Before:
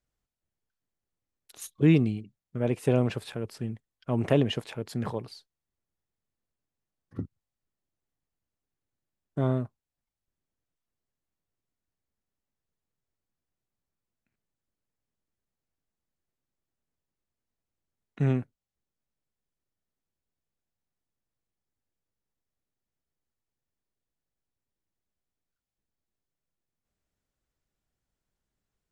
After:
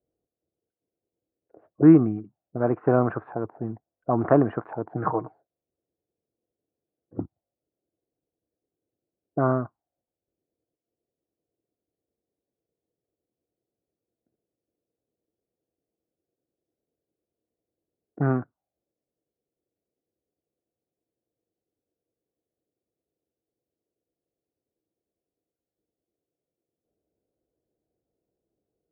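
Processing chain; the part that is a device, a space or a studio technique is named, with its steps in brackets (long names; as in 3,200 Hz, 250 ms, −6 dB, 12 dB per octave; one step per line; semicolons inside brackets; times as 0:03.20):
envelope filter bass rig (envelope-controlled low-pass 480–1,200 Hz up, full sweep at −27.5 dBFS; loudspeaker in its box 73–2,100 Hz, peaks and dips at 320 Hz +9 dB, 710 Hz +8 dB, 1,500 Hz +7 dB)
0:04.95–0:05.35: comb filter 6.4 ms, depth 60%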